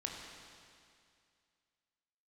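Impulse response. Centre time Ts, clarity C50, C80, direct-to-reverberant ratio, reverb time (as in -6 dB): 95 ms, 1.5 dB, 2.5 dB, -0.5 dB, 2.3 s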